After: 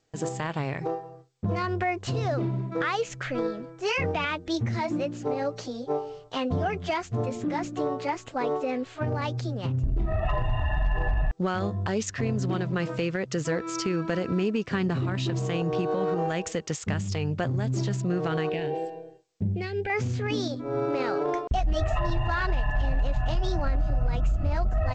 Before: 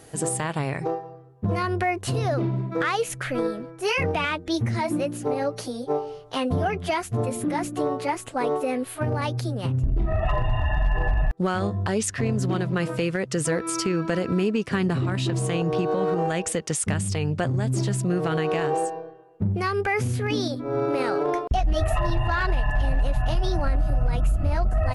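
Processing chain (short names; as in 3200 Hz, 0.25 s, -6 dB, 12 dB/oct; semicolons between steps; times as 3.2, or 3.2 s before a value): 18.49–19.9 fixed phaser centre 2900 Hz, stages 4; gate with hold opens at -35 dBFS; gain -3 dB; G.722 64 kbps 16000 Hz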